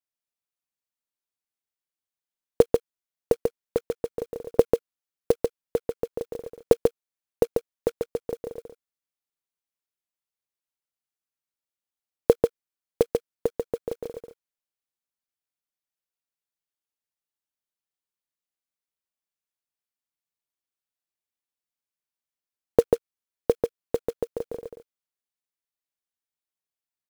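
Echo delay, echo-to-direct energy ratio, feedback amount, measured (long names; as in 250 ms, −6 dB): 141 ms, −4.0 dB, repeats not evenly spaced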